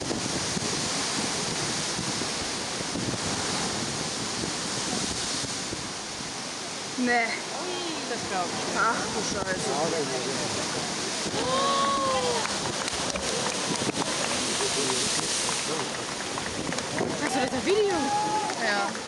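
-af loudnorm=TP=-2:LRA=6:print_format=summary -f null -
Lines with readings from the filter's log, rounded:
Input Integrated:    -27.0 LUFS
Input True Peak:     -12.8 dBTP
Input LRA:             2.2 LU
Input Threshold:     -37.0 LUFS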